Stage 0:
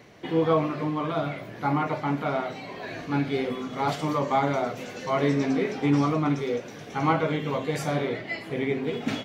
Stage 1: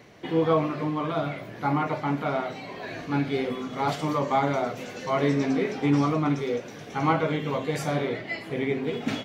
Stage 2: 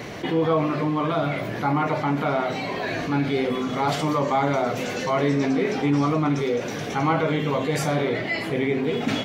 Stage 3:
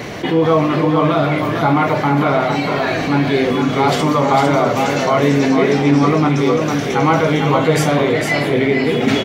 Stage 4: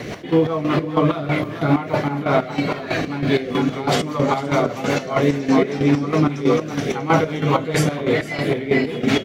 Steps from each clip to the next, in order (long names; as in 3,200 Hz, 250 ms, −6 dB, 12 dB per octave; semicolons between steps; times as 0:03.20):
no processing that can be heard
envelope flattener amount 50%
single-tap delay 454 ms −5 dB; level +7.5 dB
bit-depth reduction 10 bits, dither triangular; square-wave tremolo 3.1 Hz, depth 65%, duty 45%; rotating-speaker cabinet horn 5 Hz